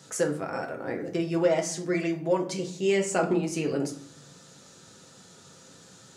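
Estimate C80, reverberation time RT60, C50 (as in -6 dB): 15.0 dB, 0.55 s, 11.0 dB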